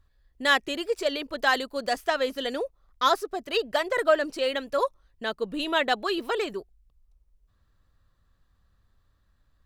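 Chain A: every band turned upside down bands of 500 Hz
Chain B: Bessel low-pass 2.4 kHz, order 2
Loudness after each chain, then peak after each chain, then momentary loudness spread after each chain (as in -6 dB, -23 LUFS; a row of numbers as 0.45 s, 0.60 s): -27.0 LUFS, -28.0 LUFS; -8.5 dBFS, -10.0 dBFS; 10 LU, 8 LU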